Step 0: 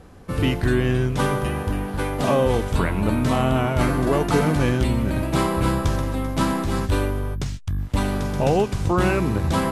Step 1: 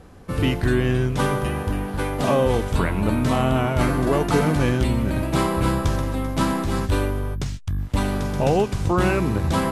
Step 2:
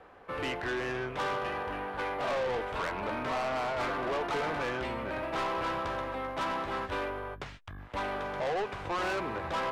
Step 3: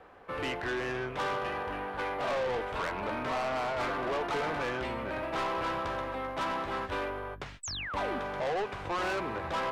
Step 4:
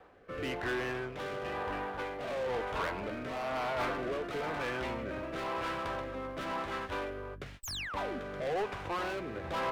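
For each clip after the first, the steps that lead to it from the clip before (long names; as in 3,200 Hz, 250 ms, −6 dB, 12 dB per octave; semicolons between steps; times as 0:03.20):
no processing that can be heard
three-way crossover with the lows and the highs turned down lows −21 dB, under 450 Hz, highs −23 dB, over 3,000 Hz; soft clipping −28.5 dBFS, distortion −8 dB
sound drawn into the spectrogram fall, 0:07.63–0:08.19, 220–8,400 Hz −38 dBFS
rotating-speaker cabinet horn 1 Hz; windowed peak hold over 3 samples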